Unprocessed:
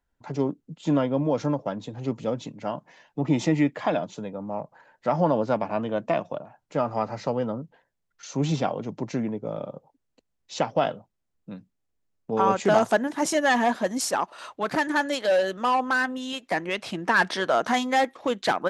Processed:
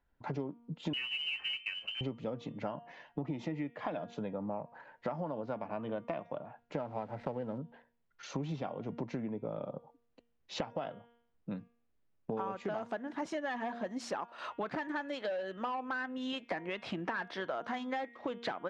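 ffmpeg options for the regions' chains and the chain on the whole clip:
-filter_complex "[0:a]asettb=1/sr,asplit=3[s0][s1][s2];[s0]atrim=end=0.934[s3];[s1]atrim=start=0.93:end=2.01,asetpts=PTS-STARTPTS,afade=t=in:d=0.004:c=qsin,afade=t=out:st=1.076:d=0.004:c=qsin,highpass=41,lowpass=f=2700:t=q:w=0.5098,lowpass=f=2700:t=q:w=0.6013,lowpass=f=2700:t=q:w=0.9,lowpass=f=2700:t=q:w=2.563,afreqshift=-3200,acrusher=bits=4:mode=log:mix=0:aa=0.000001[s4];[s2]atrim=start=2.006[s5];[s3][s4]acrossfade=d=0.004:c1=hsin:c2=qsin[s6];[s6][s5]acrossfade=d=0.004:c1=qsin:c2=hsin,asettb=1/sr,asplit=3[s7][s8][s9];[s7]atrim=end=6.764[s10];[s8]atrim=start=6.76:end=7.58,asetpts=PTS-STARTPTS,afade=t=in:d=0.004:c=qsin,afade=t=out:st=0.816:d=0.004:c=qsin,bandreject=f=1200:w=7,adynamicsmooth=sensitivity=5:basefreq=1400,aeval=exprs='val(0)*gte(abs(val(0)),0.00376)':c=same[s11];[s9]atrim=start=7.576[s12];[s10][s11]acrossfade=d=0.004:c1=hsin:c2=qsin[s13];[s13][s12]acrossfade=d=0.004:c1=qsin:c2=hsin,lowpass=3200,bandreject=f=235.8:t=h:w=4,bandreject=f=471.6:t=h:w=4,bandreject=f=707.4:t=h:w=4,bandreject=f=943.2:t=h:w=4,bandreject=f=1179:t=h:w=4,bandreject=f=1414.8:t=h:w=4,bandreject=f=1650.6:t=h:w=4,bandreject=f=1886.4:t=h:w=4,bandreject=f=2122.2:t=h:w=4,bandreject=f=2358:t=h:w=4,bandreject=f=2593.8:t=h:w=4,bandreject=f=2829.6:t=h:w=4,bandreject=f=3065.4:t=h:w=4,bandreject=f=3301.2:t=h:w=4,bandreject=f=3537:t=h:w=4,acompressor=threshold=0.0178:ratio=12,volume=1.12"

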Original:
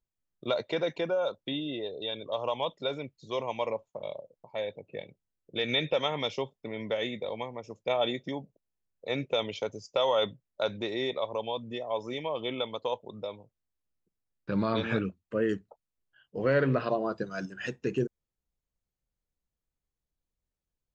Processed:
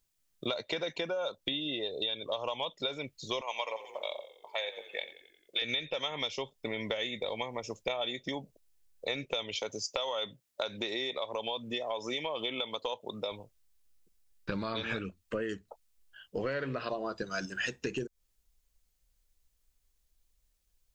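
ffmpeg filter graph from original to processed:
-filter_complex "[0:a]asettb=1/sr,asplit=3[s0][s1][s2];[s0]atrim=end=3.414[s3];[s1]atrim=start=3.41:end=5.62,asetpts=PTS-STARTPTS,afade=t=in:d=0.004:c=qsin,afade=t=out:st=2.206:d=0.004:c=qsin,highpass=730,asplit=6[s4][s5][s6][s7][s8][s9];[s5]adelay=88,afreqshift=-33,volume=0.158[s10];[s6]adelay=176,afreqshift=-66,volume=0.0902[s11];[s7]adelay=264,afreqshift=-99,volume=0.0513[s12];[s8]adelay=352,afreqshift=-132,volume=0.0295[s13];[s9]adelay=440,afreqshift=-165,volume=0.0168[s14];[s4][s10][s11][s12][s13][s14]amix=inputs=6:normalize=0,atrim=end_sample=97461[s15];[s2]atrim=start=5.616[s16];[s3][s15]acrossfade=d=0.004:c1=hsin:c2=qsin[s17];[s17][s16]acrossfade=d=0.004:c1=qsin:c2=hsin,asettb=1/sr,asplit=3[s18][s19][s20];[s18]atrim=end=9.554[s21];[s19]atrim=start=9.55:end=13.32,asetpts=PTS-STARTPTS,afade=t=in:d=0.004:c=qsin,afade=t=out:st=3.766:d=0.004:c=qsin,highpass=130,acompressor=threshold=0.0178:ratio=1.5:attack=3.2:release=140:knee=1:detection=peak[s22];[s20]atrim=start=13.316[s23];[s21][s22]acrossfade=d=0.004:c1=hsin:c2=qsin[s24];[s24][s23]acrossfade=d=0.004:c1=qsin:c2=hsin,highshelf=f=2100:g=11.5,acompressor=threshold=0.0178:ratio=10,asubboost=boost=4.5:cutoff=56,volume=1.68"

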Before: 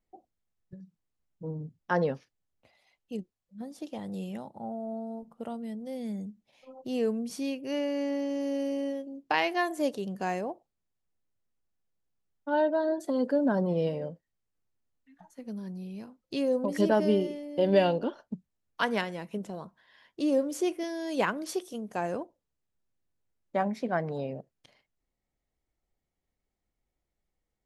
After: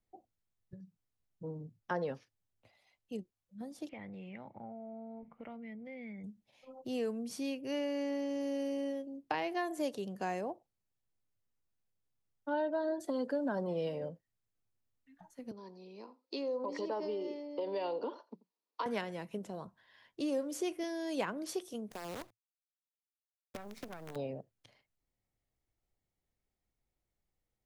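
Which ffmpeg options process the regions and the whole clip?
-filter_complex "[0:a]asettb=1/sr,asplit=3[s0][s1][s2];[s0]atrim=end=3.894[s3];[s1]atrim=start=3.89:end=6.24,asetpts=PTS-STARTPTS,afade=t=in:d=0.004:c=qsin,afade=t=out:st=2.346:d=0.004:c=qsin,lowpass=f=2200:t=q:w=12,acompressor=threshold=0.00794:ratio=3:attack=3.2:release=140:knee=1:detection=peak[s4];[s2]atrim=start=6.236[s5];[s3][s4]acrossfade=d=0.004:c1=hsin:c2=qsin[s6];[s6][s5]acrossfade=d=0.004:c1=qsin:c2=hsin,asettb=1/sr,asplit=3[s7][s8][s9];[s7]atrim=end=15.514[s10];[s8]atrim=start=15.51:end=18.86,asetpts=PTS-STARTPTS,afade=t=in:d=0.004:c=qsin,afade=t=out:st=3.346:d=0.004:c=qsin,acompressor=threshold=0.0355:ratio=4:attack=3.2:release=140:knee=1:detection=peak,highpass=f=290:w=0.5412,highpass=f=290:w=1.3066,equalizer=f=460:t=q:w=4:g=5,equalizer=f=660:t=q:w=4:g=-3,equalizer=f=980:t=q:w=4:g=10,equalizer=f=1600:t=q:w=4:g=-8,equalizer=f=3100:t=q:w=4:g=-4,equalizer=f=4500:t=q:w=4:g=6,lowpass=f=5400:w=0.5412,lowpass=f=5400:w=1.3066,aecho=1:1:86:0.0944,atrim=end_sample=147735[s11];[s9]atrim=start=18.856[s12];[s10][s11]acrossfade=d=0.004:c1=hsin:c2=qsin[s13];[s13][s12]acrossfade=d=0.004:c1=qsin:c2=hsin,asettb=1/sr,asplit=3[s14][s15][s16];[s14]atrim=end=21.914[s17];[s15]atrim=start=21.91:end=24.16,asetpts=PTS-STARTPTS,afade=t=in:d=0.004:c=qsin,afade=t=out:st=2.246:d=0.004:c=qsin,acompressor=threshold=0.0158:ratio=12:attack=3.2:release=140:knee=1:detection=peak,acrusher=bits=7:dc=4:mix=0:aa=0.000001[s18];[s16]atrim=start=24.156[s19];[s17][s18]acrossfade=d=0.004:c1=hsin:c2=qsin[s20];[s20][s19]acrossfade=d=0.004:c1=qsin:c2=hsin,equalizer=f=110:t=o:w=0.35:g=8.5,acrossover=split=230|790[s21][s22][s23];[s21]acompressor=threshold=0.00562:ratio=4[s24];[s22]acompressor=threshold=0.0282:ratio=4[s25];[s23]acompressor=threshold=0.0178:ratio=4[s26];[s24][s25][s26]amix=inputs=3:normalize=0,volume=0.668"

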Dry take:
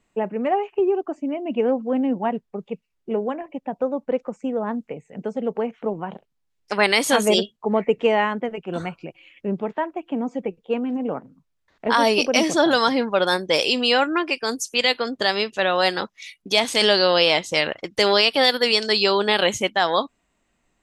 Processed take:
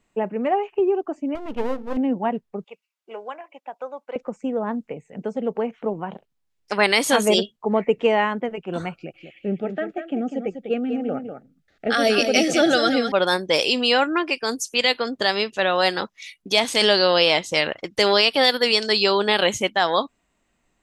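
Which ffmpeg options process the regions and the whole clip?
-filter_complex "[0:a]asettb=1/sr,asplit=3[s0][s1][s2];[s0]atrim=end=1.354[s3];[s1]atrim=start=1.35:end=1.97,asetpts=PTS-STARTPTS,afade=t=in:d=0.004:c=qsin,afade=t=out:st=0.616:d=0.004:c=qsin,aeval=exprs='max(val(0),0)':c=same,bandreject=f=245.7:t=h:w=4,bandreject=f=491.4:t=h:w=4,bandreject=f=737.1:t=h:w=4[s4];[s2]atrim=start=1.966[s5];[s3][s4]acrossfade=d=0.004:c1=hsin:c2=qsin[s6];[s6][s5]acrossfade=d=0.004:c1=qsin:c2=hsin,asettb=1/sr,asplit=3[s7][s8][s9];[s7]atrim=end=2.644[s10];[s8]atrim=start=2.64:end=4.16,asetpts=PTS-STARTPTS,afade=t=in:d=0.004:c=qsin,afade=t=out:st=1.516:d=0.004:c=qsin,highpass=870,bandreject=f=1800:w=12[s11];[s9]atrim=start=4.156[s12];[s10][s11]acrossfade=d=0.004:c1=hsin:c2=qsin[s13];[s13][s12]acrossfade=d=0.004:c1=qsin:c2=hsin,asettb=1/sr,asplit=3[s14][s15][s16];[s14]atrim=end=8.944[s17];[s15]atrim=start=8.94:end=13.12,asetpts=PTS-STARTPTS,afade=t=in:d=0.004:c=qsin,afade=t=out:st=4.176:d=0.004:c=qsin,asuperstop=centerf=1000:order=8:qfactor=2.8,aecho=1:1:197:0.398,atrim=end_sample=184338[s18];[s16]atrim=start=13.116[s19];[s17][s18]acrossfade=d=0.004:c1=hsin:c2=qsin[s20];[s20][s19]acrossfade=d=0.004:c1=qsin:c2=hsin"

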